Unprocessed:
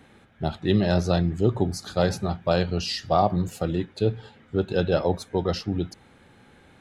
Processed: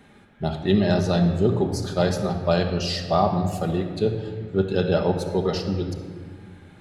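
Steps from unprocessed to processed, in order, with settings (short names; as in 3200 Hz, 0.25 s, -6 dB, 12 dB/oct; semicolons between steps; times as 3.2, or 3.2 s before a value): shoebox room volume 2600 m³, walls mixed, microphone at 1.3 m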